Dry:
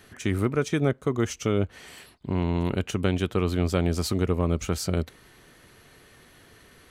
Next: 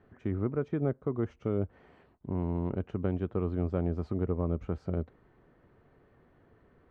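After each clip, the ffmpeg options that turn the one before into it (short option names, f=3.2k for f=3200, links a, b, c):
-af "lowpass=1k,volume=-6dB"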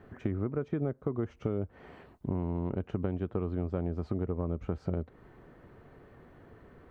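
-af "acompressor=threshold=-37dB:ratio=5,volume=8dB"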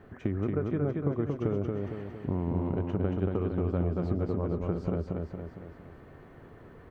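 -af "aecho=1:1:229|458|687|916|1145|1374|1603:0.708|0.368|0.191|0.0995|0.0518|0.0269|0.014,volume=1.5dB"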